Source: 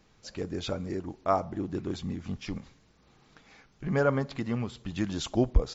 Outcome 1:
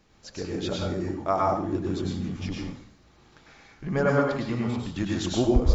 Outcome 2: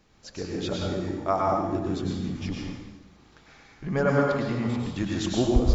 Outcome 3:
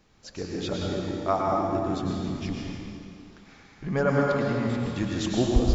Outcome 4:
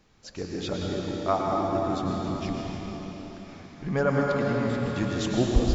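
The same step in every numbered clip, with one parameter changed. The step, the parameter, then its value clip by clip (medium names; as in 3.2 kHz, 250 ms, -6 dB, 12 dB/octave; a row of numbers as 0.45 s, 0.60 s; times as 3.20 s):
plate-style reverb, RT60: 0.54 s, 1.1 s, 2.4 s, 5 s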